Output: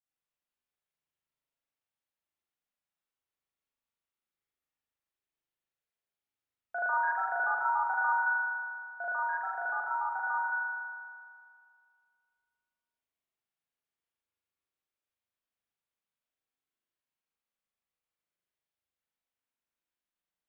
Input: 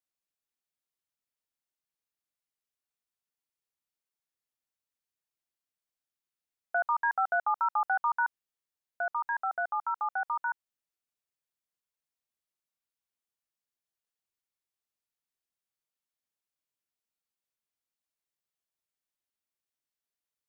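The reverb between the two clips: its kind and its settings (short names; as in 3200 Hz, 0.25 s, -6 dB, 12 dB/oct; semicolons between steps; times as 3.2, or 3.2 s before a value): spring tank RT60 2.1 s, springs 38 ms, chirp 55 ms, DRR -9 dB; gain -8 dB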